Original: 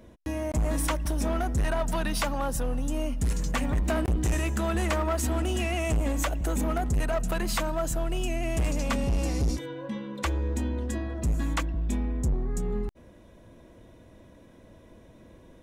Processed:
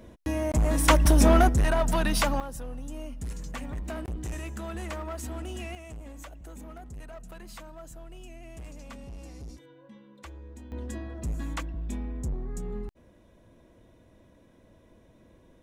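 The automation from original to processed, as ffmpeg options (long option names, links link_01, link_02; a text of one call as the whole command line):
ffmpeg -i in.wav -af "asetnsamples=nb_out_samples=441:pad=0,asendcmd='0.88 volume volume 9.5dB;1.49 volume volume 3dB;2.4 volume volume -9dB;5.75 volume volume -16.5dB;10.72 volume volume -5.5dB',volume=2.5dB" out.wav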